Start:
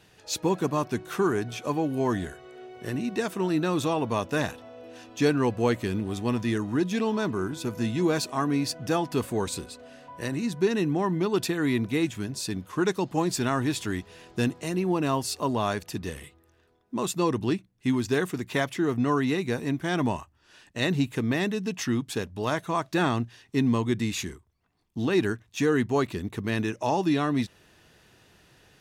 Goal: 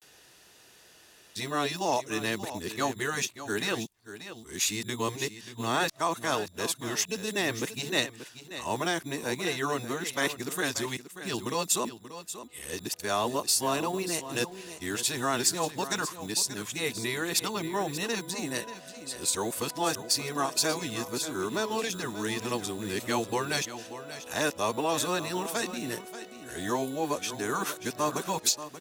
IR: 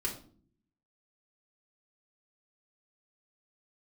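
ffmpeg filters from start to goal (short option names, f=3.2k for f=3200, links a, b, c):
-filter_complex "[0:a]areverse,afftfilt=real='re*lt(hypot(re,im),0.501)':imag='im*lt(hypot(re,im),0.501)':win_size=1024:overlap=0.75,acrossover=split=210|2000[a][b][c];[a]acrusher=samples=12:mix=1:aa=0.000001[d];[d][b][c]amix=inputs=3:normalize=0,bass=f=250:g=-11,treble=f=4k:g=9,asoftclip=type=tanh:threshold=-12dB,asplit=2[e][f];[f]aecho=0:1:584:0.237[g];[e][g]amix=inputs=2:normalize=0" -ar 48000 -c:a libopus -b:a 128k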